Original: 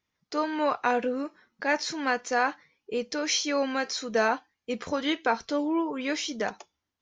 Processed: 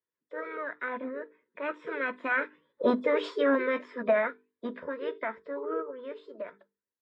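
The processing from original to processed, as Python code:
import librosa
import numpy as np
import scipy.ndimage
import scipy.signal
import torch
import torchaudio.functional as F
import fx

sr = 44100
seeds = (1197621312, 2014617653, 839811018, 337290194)

y = fx.freq_compress(x, sr, knee_hz=3300.0, ratio=1.5)
y = fx.doppler_pass(y, sr, speed_mps=10, closest_m=4.9, pass_at_s=3.14)
y = fx.highpass(y, sr, hz=280.0, slope=6)
y = fx.high_shelf(y, sr, hz=3300.0, db=-8.5)
y = fx.fixed_phaser(y, sr, hz=1900.0, stages=4)
y = fx.small_body(y, sr, hz=(400.0, 950.0, 2500.0), ring_ms=20, db=14)
y = fx.formant_shift(y, sr, semitones=6)
y = fx.band_shelf(y, sr, hz=4200.0, db=-15.0, octaves=1.7)
y = fx.hum_notches(y, sr, base_hz=50, count=9)
y = F.gain(torch.from_numpy(y), 5.5).numpy()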